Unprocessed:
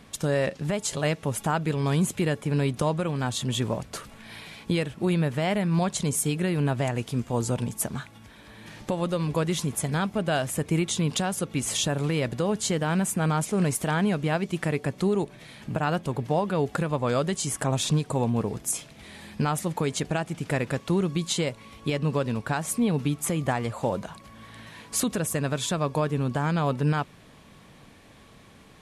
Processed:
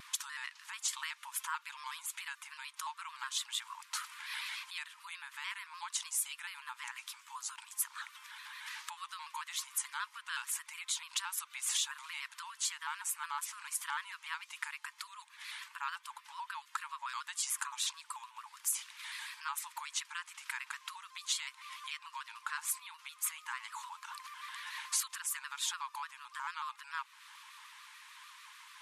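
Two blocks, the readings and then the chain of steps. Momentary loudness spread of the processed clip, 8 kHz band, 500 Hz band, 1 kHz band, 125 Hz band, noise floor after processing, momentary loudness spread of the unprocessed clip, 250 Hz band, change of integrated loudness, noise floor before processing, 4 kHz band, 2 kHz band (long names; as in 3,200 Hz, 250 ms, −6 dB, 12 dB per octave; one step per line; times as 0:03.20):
12 LU, −5.5 dB, below −40 dB, −10.5 dB, below −40 dB, −62 dBFS, 8 LU, below −40 dB, −12.5 dB, −51 dBFS, −5.5 dB, −7.0 dB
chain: downward compressor 3 to 1, threshold −36 dBFS, peak gain reduction 12.5 dB
linear-phase brick-wall high-pass 900 Hz
pitch modulation by a square or saw wave square 6.8 Hz, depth 100 cents
level +3 dB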